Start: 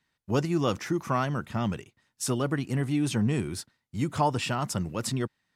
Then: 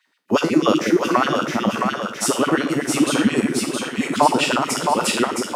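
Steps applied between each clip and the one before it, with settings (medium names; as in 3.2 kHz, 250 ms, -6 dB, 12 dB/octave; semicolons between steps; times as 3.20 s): spectral sustain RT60 0.49 s; LFO high-pass sine 8.2 Hz 220–2900 Hz; two-band feedback delay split 470 Hz, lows 183 ms, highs 666 ms, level -4 dB; trim +6.5 dB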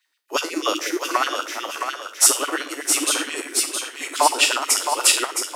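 steep high-pass 280 Hz 72 dB/octave; tilt EQ +3.5 dB/octave; upward expansion 1.5:1, over -30 dBFS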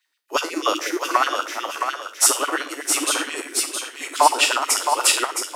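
dynamic bell 980 Hz, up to +5 dB, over -33 dBFS, Q 0.76; in parallel at -11.5 dB: saturation -6.5 dBFS, distortion -16 dB; on the sum: trim -3.5 dB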